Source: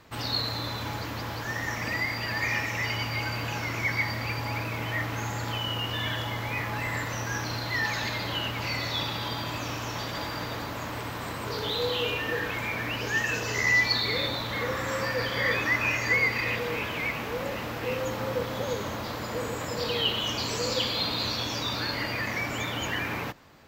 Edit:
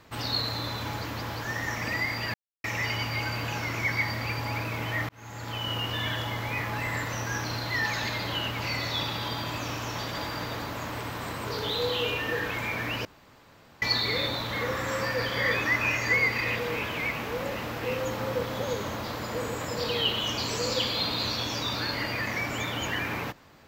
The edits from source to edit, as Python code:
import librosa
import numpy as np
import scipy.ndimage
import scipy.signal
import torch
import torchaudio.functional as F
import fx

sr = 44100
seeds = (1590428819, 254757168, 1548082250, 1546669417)

y = fx.edit(x, sr, fx.silence(start_s=2.34, length_s=0.3),
    fx.fade_in_span(start_s=5.09, length_s=0.63),
    fx.room_tone_fill(start_s=13.05, length_s=0.77), tone=tone)